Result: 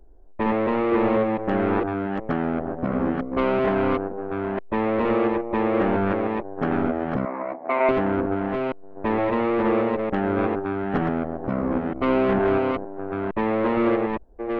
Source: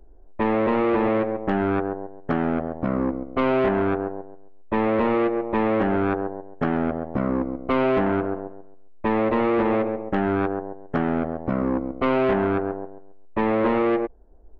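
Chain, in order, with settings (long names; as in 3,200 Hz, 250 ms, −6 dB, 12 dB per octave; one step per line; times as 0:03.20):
delay that plays each chunk backwards 459 ms, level −3.5 dB
0:07.25–0:07.89: loudspeaker in its box 450–3,600 Hz, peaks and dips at 470 Hz −8 dB, 660 Hz +8 dB, 970 Hz +5 dB, 1,400 Hz −4 dB, 2,200 Hz +8 dB, 3,100 Hz −10 dB
level −1.5 dB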